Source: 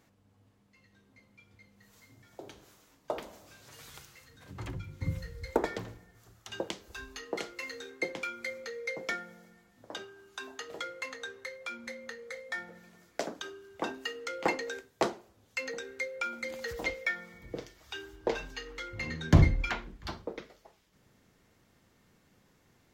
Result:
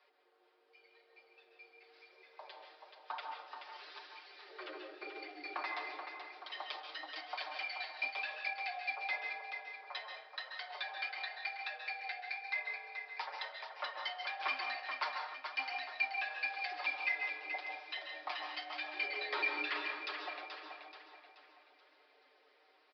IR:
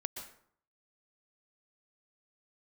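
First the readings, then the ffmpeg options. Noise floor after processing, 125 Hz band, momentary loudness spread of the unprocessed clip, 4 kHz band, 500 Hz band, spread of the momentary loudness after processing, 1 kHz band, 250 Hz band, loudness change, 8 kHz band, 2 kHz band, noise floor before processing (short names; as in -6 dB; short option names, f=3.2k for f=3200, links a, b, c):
-69 dBFS, under -40 dB, 18 LU, +0.5 dB, -13.0 dB, 15 LU, -0.5 dB, -20.0 dB, -4.0 dB, under -20 dB, 0.0 dB, -67 dBFS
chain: -filter_complex "[0:a]lowshelf=f=380:g=-11.5,aecho=1:1:6.1:0.74,acrossover=split=650|1200[a][b][c];[a]acompressor=threshold=-44dB:ratio=6[d];[d][b][c]amix=inputs=3:normalize=0,asoftclip=type=tanh:threshold=-28dB,aecho=1:1:430|860|1290|1720|2150:0.447|0.192|0.0826|0.0355|0.0153,afreqshift=260,flanger=delay=0.8:depth=8.9:regen=44:speed=0.95:shape=triangular[e];[1:a]atrim=start_sample=2205,asetrate=39690,aresample=44100[f];[e][f]afir=irnorm=-1:irlink=0,aresample=11025,aresample=44100,volume=3dB"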